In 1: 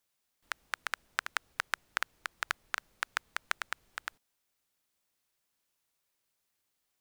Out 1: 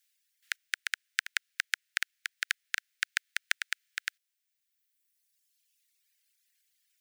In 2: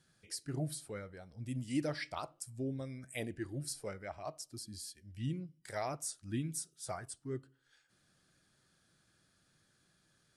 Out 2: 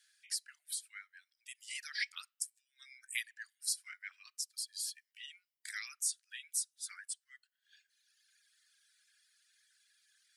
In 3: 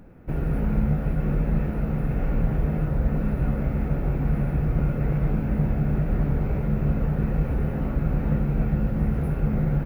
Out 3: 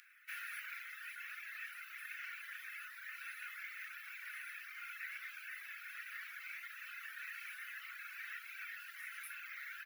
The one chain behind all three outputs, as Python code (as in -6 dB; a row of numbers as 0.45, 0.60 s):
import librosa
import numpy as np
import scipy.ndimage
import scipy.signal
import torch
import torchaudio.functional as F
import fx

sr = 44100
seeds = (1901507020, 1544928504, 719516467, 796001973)

y = scipy.signal.sosfilt(scipy.signal.butter(8, 1600.0, 'highpass', fs=sr, output='sos'), x)
y = fx.dereverb_blind(y, sr, rt60_s=2.0)
y = fx.rider(y, sr, range_db=4, speed_s=2.0)
y = F.gain(torch.from_numpy(y), 6.0).numpy()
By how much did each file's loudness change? +3.5, +1.0, -21.0 LU